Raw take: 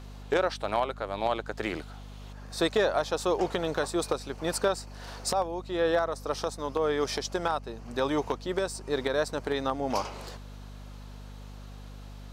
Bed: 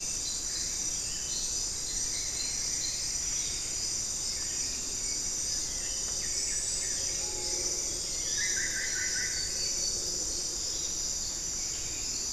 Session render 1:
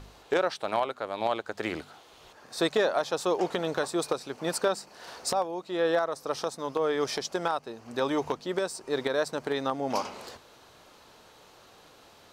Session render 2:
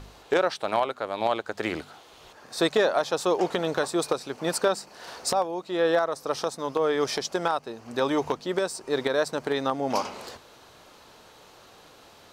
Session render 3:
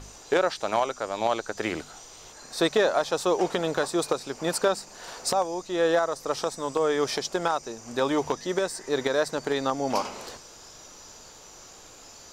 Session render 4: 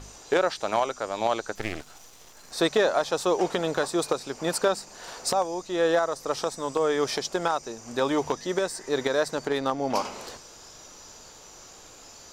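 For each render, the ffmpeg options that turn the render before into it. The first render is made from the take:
-af "bandreject=f=50:t=h:w=4,bandreject=f=100:t=h:w=4,bandreject=f=150:t=h:w=4,bandreject=f=200:t=h:w=4,bandreject=f=250:t=h:w=4"
-af "volume=1.41"
-filter_complex "[1:a]volume=0.158[s0];[0:a][s0]amix=inputs=2:normalize=0"
-filter_complex "[0:a]asettb=1/sr,asplit=3[s0][s1][s2];[s0]atrim=end=1.554[s3];[s1]atrim=start=1.55:end=2.52,asetpts=PTS-STARTPTS,afade=t=in:d=0.004:c=qsin,afade=t=out:st=0.966:d=0.004:c=qsin,aeval=exprs='max(val(0),0)':c=same[s4];[s2]atrim=start=2.516[s5];[s3][s4]acrossfade=d=0.004:c1=hsin:c2=qsin[s6];[s6][s5]acrossfade=d=0.004:c1=qsin:c2=hsin,asettb=1/sr,asplit=3[s7][s8][s9];[s7]atrim=end=9.474[s10];[s8]atrim=start=9.47:end=9.94,asetpts=PTS-STARTPTS,afade=t=in:d=0.004:c=qsin,afade=t=out:st=0.466:d=0.004:c=qsin,adynamicsmooth=sensitivity=5:basefreq=3900[s11];[s9]atrim=start=9.936[s12];[s10][s11]acrossfade=d=0.004:c1=hsin:c2=qsin[s13];[s13][s12]acrossfade=d=0.004:c1=qsin:c2=hsin"

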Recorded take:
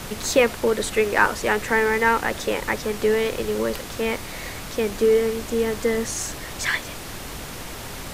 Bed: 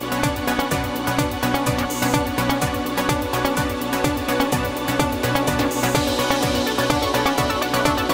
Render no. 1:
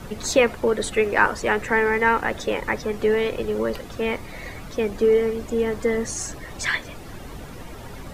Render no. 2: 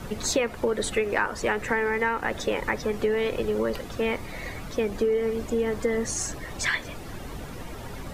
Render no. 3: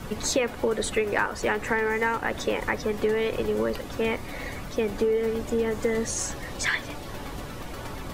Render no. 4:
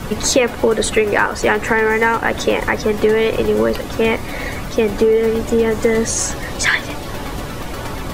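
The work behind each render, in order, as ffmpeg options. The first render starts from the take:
-af "afftdn=nr=12:nf=-35"
-af "acompressor=threshold=0.0891:ratio=6"
-filter_complex "[1:a]volume=0.075[s0];[0:a][s0]amix=inputs=2:normalize=0"
-af "volume=3.35,alimiter=limit=0.794:level=0:latency=1"

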